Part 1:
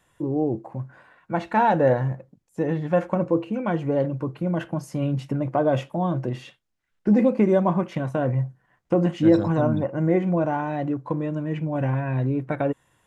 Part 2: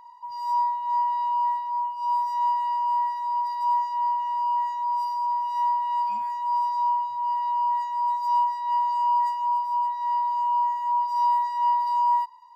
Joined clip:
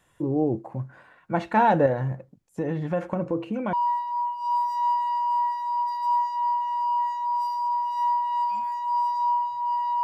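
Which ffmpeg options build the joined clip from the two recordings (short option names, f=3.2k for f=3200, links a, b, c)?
-filter_complex "[0:a]asettb=1/sr,asplit=3[a][b][c];[a]atrim=end=1.864[d];[b]atrim=start=1.86:end=3.73,asetpts=PTS-STARTPTS,afade=t=in:d=0.004:c=qsin,afade=t=out:st=1.866:d=0.004:c=qsin,acompressor=threshold=-25dB:ratio=2:attack=3.2:release=140:knee=1:detection=peak[e];[c]atrim=start=3.726[f];[d][e]acrossfade=d=0.004:c1=hsin:c2=qsin[g];[g][f]acrossfade=d=0.004:c1=qsin:c2=hsin,apad=whole_dur=10.03,atrim=end=10.03,atrim=end=3.732[h];[1:a]atrim=start=1.308:end=7.61[i];[h][i]acrossfade=d=0.004:c1=hsin:c2=hsin"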